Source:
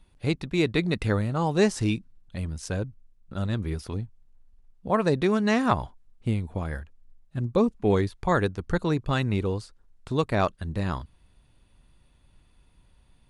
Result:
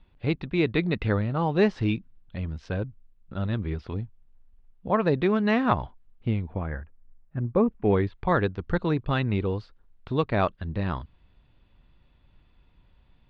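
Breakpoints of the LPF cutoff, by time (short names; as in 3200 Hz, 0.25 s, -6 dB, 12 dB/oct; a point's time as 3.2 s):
LPF 24 dB/oct
6.3 s 3600 Hz
6.79 s 2100 Hz
7.53 s 2100 Hz
8.31 s 3800 Hz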